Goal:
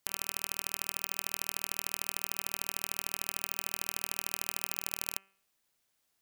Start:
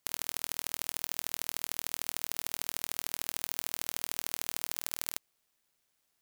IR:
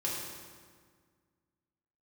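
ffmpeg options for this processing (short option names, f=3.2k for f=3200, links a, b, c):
-af "bandreject=f=194:t=h:w=4,bandreject=f=388:t=h:w=4,bandreject=f=582:t=h:w=4,bandreject=f=776:t=h:w=4,bandreject=f=970:t=h:w=4,bandreject=f=1.164k:t=h:w=4,bandreject=f=1.358k:t=h:w=4,bandreject=f=1.552k:t=h:w=4,bandreject=f=1.746k:t=h:w=4,bandreject=f=1.94k:t=h:w=4,bandreject=f=2.134k:t=h:w=4,bandreject=f=2.328k:t=h:w=4,bandreject=f=2.522k:t=h:w=4,bandreject=f=2.716k:t=h:w=4,bandreject=f=2.91k:t=h:w=4,bandreject=f=3.104k:t=h:w=4"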